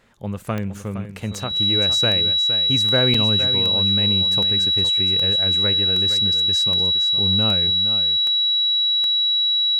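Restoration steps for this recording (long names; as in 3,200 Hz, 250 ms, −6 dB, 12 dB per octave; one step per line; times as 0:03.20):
click removal
notch filter 3,900 Hz, Q 30
repair the gap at 0:03.14, 4.2 ms
echo removal 464 ms −11 dB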